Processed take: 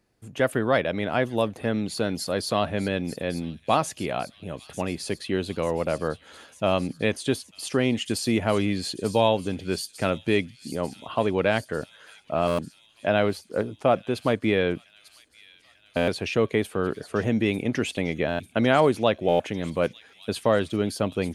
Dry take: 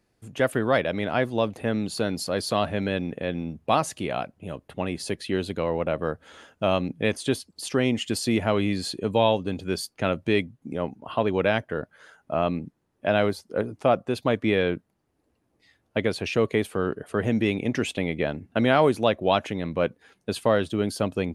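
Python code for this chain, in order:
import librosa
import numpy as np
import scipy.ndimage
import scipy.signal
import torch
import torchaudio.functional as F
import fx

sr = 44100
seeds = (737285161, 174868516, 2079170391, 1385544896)

y = fx.echo_wet_highpass(x, sr, ms=895, feedback_pct=68, hz=4700.0, wet_db=-9.5)
y = fx.buffer_glitch(y, sr, at_s=(12.47, 15.96, 18.28, 19.28), block=512, repeats=9)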